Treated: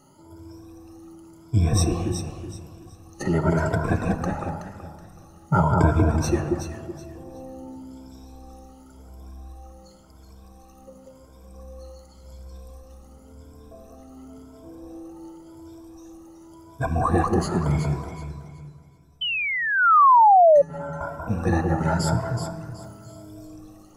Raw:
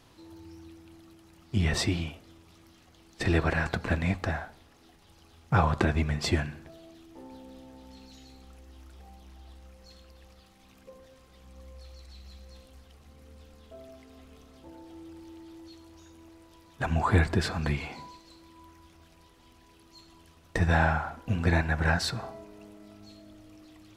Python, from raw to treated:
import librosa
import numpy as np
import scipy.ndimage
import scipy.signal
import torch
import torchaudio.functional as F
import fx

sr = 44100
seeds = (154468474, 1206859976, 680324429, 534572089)

y = fx.spec_ripple(x, sr, per_octave=1.7, drift_hz=0.92, depth_db=22)
y = fx.stiff_resonator(y, sr, f0_hz=140.0, decay_s=0.34, stiffness=0.002, at=(18.11, 21.01))
y = fx.high_shelf(y, sr, hz=3700.0, db=8.0, at=(22.81, 23.47))
y = fx.echo_alternate(y, sr, ms=187, hz=1400.0, feedback_pct=52, wet_db=-2.0)
y = fx.room_shoebox(y, sr, seeds[0], volume_m3=2900.0, walls='mixed', distance_m=0.56)
y = fx.spec_paint(y, sr, seeds[1], shape='fall', start_s=19.21, length_s=1.41, low_hz=550.0, high_hz=3100.0, level_db=-13.0)
y = fx.band_shelf(y, sr, hz=2700.0, db=-12.5, octaves=1.7)